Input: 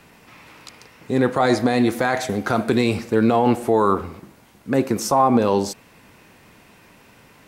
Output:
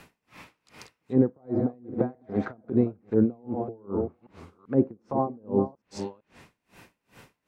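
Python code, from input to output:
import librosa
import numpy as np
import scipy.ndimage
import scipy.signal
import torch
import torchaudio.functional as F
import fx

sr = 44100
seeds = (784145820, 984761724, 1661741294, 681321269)

y = fx.reverse_delay(x, sr, ms=388, wet_db=-7.5)
y = fx.env_lowpass_down(y, sr, base_hz=460.0, full_db=-16.0)
y = y * 10.0 ** (-34 * (0.5 - 0.5 * np.cos(2.0 * np.pi * 2.5 * np.arange(len(y)) / sr)) / 20.0)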